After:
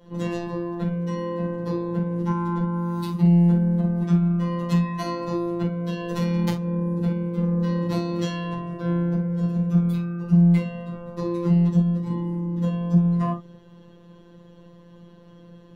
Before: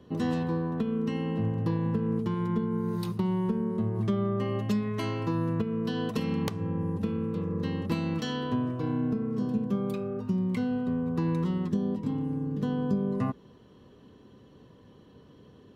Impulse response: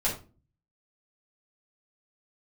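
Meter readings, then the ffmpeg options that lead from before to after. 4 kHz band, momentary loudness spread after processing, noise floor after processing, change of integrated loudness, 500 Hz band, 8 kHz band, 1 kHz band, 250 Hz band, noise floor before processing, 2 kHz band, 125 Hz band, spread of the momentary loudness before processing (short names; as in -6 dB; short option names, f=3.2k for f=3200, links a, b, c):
+1.5 dB, 10 LU, -49 dBFS, +6.5 dB, +2.5 dB, n/a, +5.0 dB, +6.0 dB, -55 dBFS, +3.0 dB, +8.5 dB, 3 LU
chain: -filter_complex "[1:a]atrim=start_sample=2205,afade=t=out:st=0.14:d=0.01,atrim=end_sample=6615[a];[0:a][a]afir=irnorm=-1:irlink=0,afftfilt=real='hypot(re,im)*cos(PI*b)':imag='0':win_size=1024:overlap=0.75,aeval=exprs='0.447*(cos(1*acos(clip(val(0)/0.447,-1,1)))-cos(1*PI/2))+0.00708*(cos(8*acos(clip(val(0)/0.447,-1,1)))-cos(8*PI/2))':c=same"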